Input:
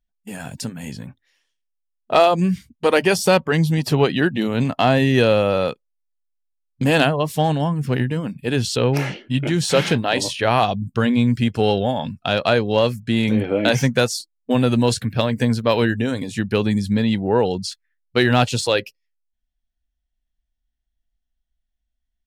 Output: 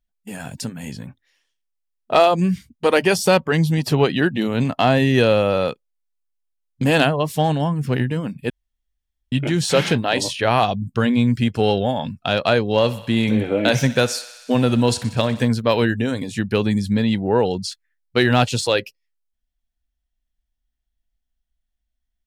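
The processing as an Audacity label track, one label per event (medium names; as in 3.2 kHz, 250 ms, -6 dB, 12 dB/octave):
8.500000	9.320000	room tone
12.730000	15.480000	thinning echo 62 ms, feedback 78%, high-pass 480 Hz, level -16 dB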